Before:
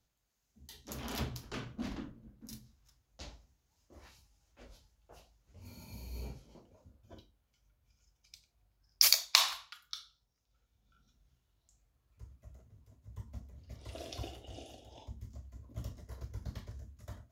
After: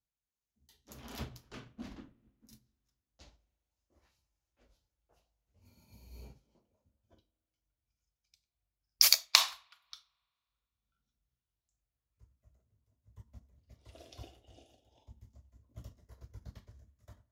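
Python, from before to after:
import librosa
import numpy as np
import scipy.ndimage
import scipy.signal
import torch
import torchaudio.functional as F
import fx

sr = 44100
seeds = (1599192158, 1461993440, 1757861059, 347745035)

y = fx.rev_spring(x, sr, rt60_s=2.2, pass_ms=(38,), chirp_ms=70, drr_db=18.0)
y = fx.upward_expand(y, sr, threshold_db=-58.0, expansion=1.5)
y = F.gain(torch.from_numpy(y), 2.5).numpy()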